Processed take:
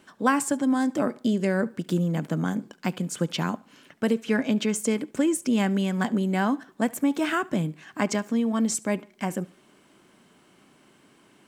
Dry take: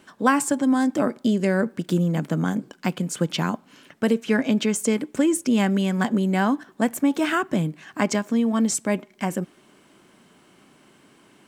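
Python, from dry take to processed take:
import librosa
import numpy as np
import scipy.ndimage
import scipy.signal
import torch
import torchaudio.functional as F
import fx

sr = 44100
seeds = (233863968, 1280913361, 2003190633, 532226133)

y = fx.echo_feedback(x, sr, ms=71, feedback_pct=33, wet_db=-23.5)
y = y * librosa.db_to_amplitude(-3.0)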